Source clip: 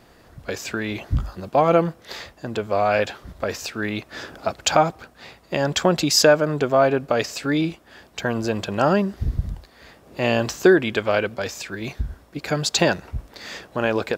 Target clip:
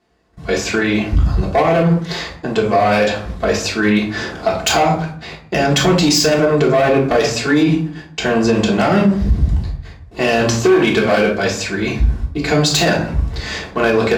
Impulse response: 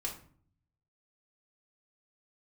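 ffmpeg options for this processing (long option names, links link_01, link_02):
-filter_complex "[0:a]equalizer=frequency=210:width=1.8:gain=2.5,agate=range=-21dB:threshold=-44dB:ratio=16:detection=peak,bandreject=frequency=118.9:width_type=h:width=4,bandreject=frequency=237.8:width_type=h:width=4,bandreject=frequency=356.7:width_type=h:width=4,acrossover=split=1800[link_01][link_02];[link_01]asoftclip=type=tanh:threshold=-12.5dB[link_03];[link_02]lowpass=8600[link_04];[link_03][link_04]amix=inputs=2:normalize=0,volume=15.5dB,asoftclip=hard,volume=-15.5dB,highpass=42[link_05];[1:a]atrim=start_sample=2205,asetrate=40572,aresample=44100[link_06];[link_05][link_06]afir=irnorm=-1:irlink=0,alimiter=level_in=13.5dB:limit=-1dB:release=50:level=0:latency=1,volume=-4dB"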